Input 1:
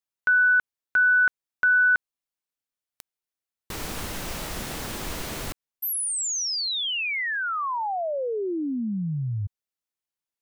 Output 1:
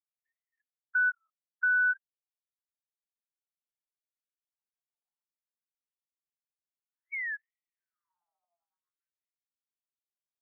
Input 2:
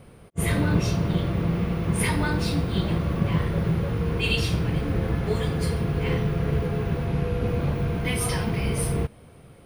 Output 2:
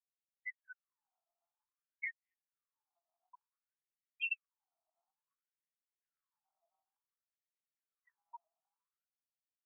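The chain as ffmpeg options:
-af "afftfilt=real='re*gte(hypot(re,im),0.178)':imag='im*gte(hypot(re,im),0.178)':win_size=1024:overlap=0.75,afftfilt=real='re*between(b*sr/1024,910*pow(2700/910,0.5+0.5*sin(2*PI*0.56*pts/sr))/1.41,910*pow(2700/910,0.5+0.5*sin(2*PI*0.56*pts/sr))*1.41)':imag='im*between(b*sr/1024,910*pow(2700/910,0.5+0.5*sin(2*PI*0.56*pts/sr))/1.41,910*pow(2700/910,0.5+0.5*sin(2*PI*0.56*pts/sr))*1.41)':win_size=1024:overlap=0.75,volume=-6dB"

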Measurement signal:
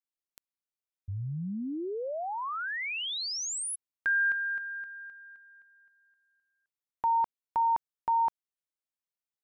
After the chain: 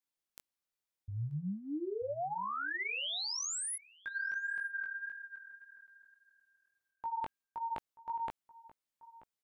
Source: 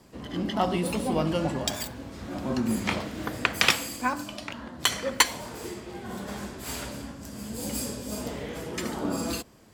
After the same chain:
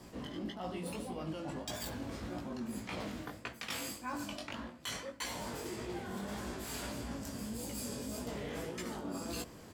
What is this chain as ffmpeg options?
-filter_complex "[0:a]areverse,acompressor=threshold=-38dB:ratio=10:attack=2.3:release=343:knee=1:detection=peak,areverse,flanger=delay=16.5:depth=5:speed=1.7,asplit=2[a][b];[b]adelay=932.9,volume=-18dB,highshelf=f=4k:g=-21[c];[a][c]amix=inputs=2:normalize=0,volume=5.5dB"

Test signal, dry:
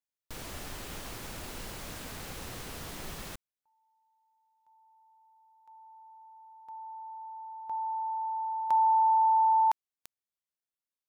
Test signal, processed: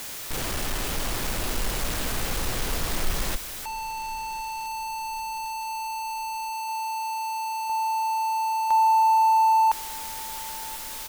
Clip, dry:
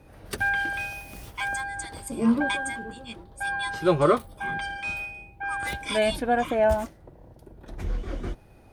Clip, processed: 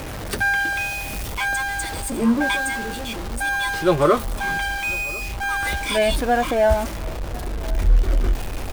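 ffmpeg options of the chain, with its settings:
-filter_complex "[0:a]aeval=exprs='val(0)+0.5*0.0335*sgn(val(0))':c=same,asplit=2[a][b];[b]adelay=1046,lowpass=f=2k:p=1,volume=-21dB,asplit=2[c][d];[d]adelay=1046,lowpass=f=2k:p=1,volume=0.47,asplit=2[e][f];[f]adelay=1046,lowpass=f=2k:p=1,volume=0.47[g];[a][c][e][g]amix=inputs=4:normalize=0,asubboost=boost=4:cutoff=57,volume=3dB"

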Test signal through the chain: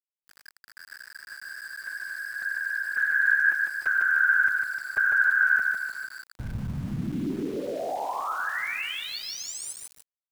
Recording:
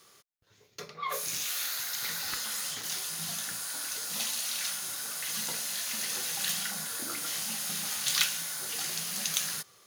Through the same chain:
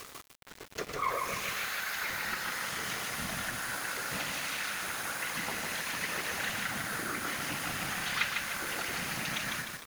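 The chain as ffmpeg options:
-filter_complex "[0:a]acrossover=split=4200[a][b];[b]acompressor=threshold=-40dB:ratio=4:attack=1:release=60[c];[a][c]amix=inputs=2:normalize=0,highpass=42,highshelf=f=2.8k:t=q:w=1.5:g=-7,acompressor=mode=upward:threshold=-31dB:ratio=2.5,afftfilt=real='hypot(re,im)*cos(2*PI*random(0))':imag='hypot(re,im)*sin(2*PI*random(1))':win_size=512:overlap=0.75,asplit=2[d][e];[e]aecho=0:1:151|302|453|604|755|906:0.631|0.309|0.151|0.0742|0.0364|0.0178[f];[d][f]amix=inputs=2:normalize=0,aeval=exprs='val(0)*gte(abs(val(0)),0.00447)':c=same,volume=7dB"

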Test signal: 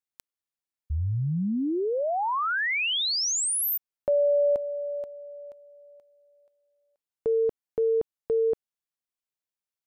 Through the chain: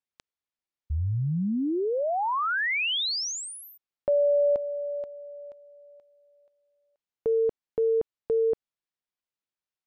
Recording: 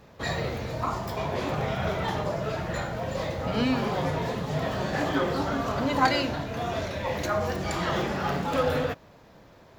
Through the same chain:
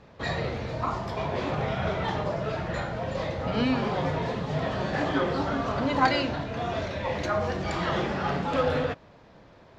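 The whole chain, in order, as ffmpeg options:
-af "lowpass=5k"

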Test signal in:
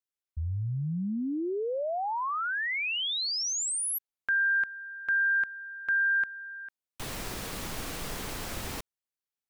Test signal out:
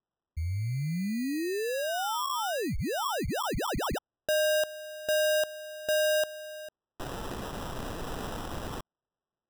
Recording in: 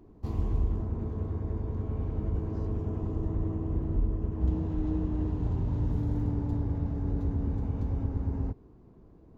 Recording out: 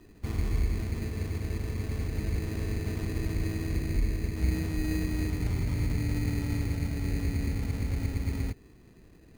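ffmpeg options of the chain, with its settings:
-af "acrusher=samples=20:mix=1:aa=0.000001"

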